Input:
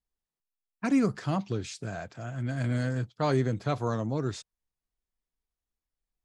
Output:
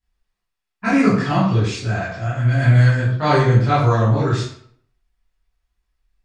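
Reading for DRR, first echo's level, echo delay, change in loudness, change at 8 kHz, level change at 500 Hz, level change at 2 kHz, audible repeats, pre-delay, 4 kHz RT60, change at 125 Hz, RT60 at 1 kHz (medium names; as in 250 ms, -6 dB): -11.0 dB, no echo, no echo, +13.0 dB, no reading, +10.5 dB, +15.5 dB, no echo, 14 ms, 0.45 s, +16.0 dB, 0.65 s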